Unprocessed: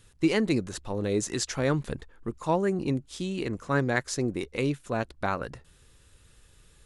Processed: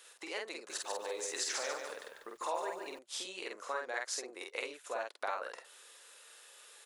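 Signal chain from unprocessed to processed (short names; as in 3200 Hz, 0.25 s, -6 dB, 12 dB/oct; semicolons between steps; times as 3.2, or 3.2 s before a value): compressor 6:1, threshold -38 dBFS, peak gain reduction 18 dB; HPF 520 Hz 24 dB/oct; doubler 48 ms -2.5 dB; 0.55–2.99 lo-fi delay 0.145 s, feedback 35%, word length 11-bit, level -5 dB; gain +4.5 dB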